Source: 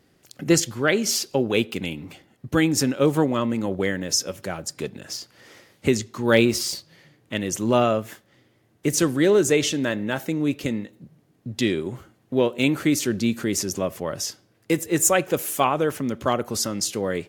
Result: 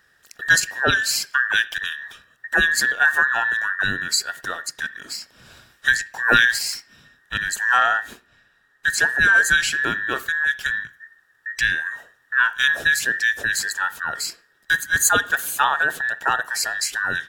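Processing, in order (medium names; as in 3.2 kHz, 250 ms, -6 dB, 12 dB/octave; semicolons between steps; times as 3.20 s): every band turned upside down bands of 2 kHz; 7.77–9.16 s: treble shelf 10 kHz -8 dB; on a send: reverberation, pre-delay 51 ms, DRR 18 dB; on the sum: trim +1.5 dB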